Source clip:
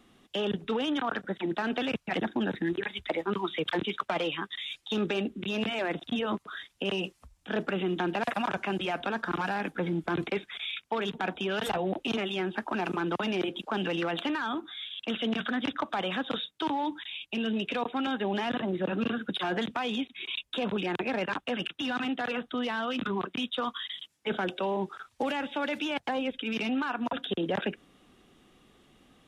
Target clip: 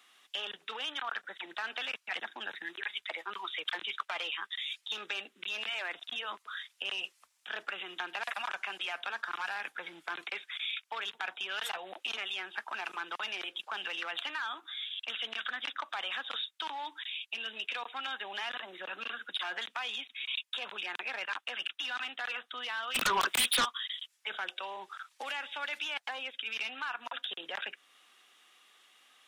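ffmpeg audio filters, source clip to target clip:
ffmpeg -i in.wav -filter_complex "[0:a]highpass=1300,asplit=2[link_01][link_02];[link_02]acompressor=threshold=-48dB:ratio=6,volume=0.5dB[link_03];[link_01][link_03]amix=inputs=2:normalize=0,asplit=3[link_04][link_05][link_06];[link_04]afade=type=out:start_time=22.94:duration=0.02[link_07];[link_05]aeval=exprs='0.0841*sin(PI/2*5.01*val(0)/0.0841)':channel_layout=same,afade=type=in:start_time=22.94:duration=0.02,afade=type=out:start_time=23.64:duration=0.02[link_08];[link_06]afade=type=in:start_time=23.64:duration=0.02[link_09];[link_07][link_08][link_09]amix=inputs=3:normalize=0,volume=-2dB" out.wav

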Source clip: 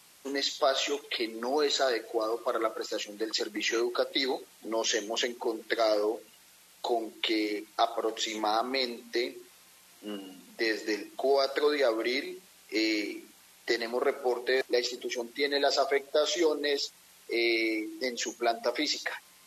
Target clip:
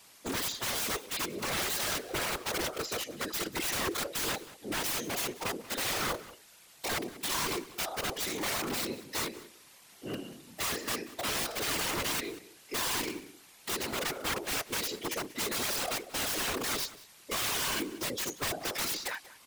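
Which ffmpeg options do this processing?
ffmpeg -i in.wav -filter_complex "[0:a]aeval=exprs='(tanh(5.62*val(0)+0.45)-tanh(0.45))/5.62':channel_layout=same,aeval=exprs='(mod(29.9*val(0)+1,2)-1)/29.9':channel_layout=same,afftfilt=real='hypot(re,im)*cos(2*PI*random(0))':imag='hypot(re,im)*sin(2*PI*random(1))':win_size=512:overlap=0.75,asplit=2[link_01][link_02];[link_02]adelay=186.6,volume=-17dB,highshelf=frequency=4000:gain=-4.2[link_03];[link_01][link_03]amix=inputs=2:normalize=0,volume=8dB" out.wav

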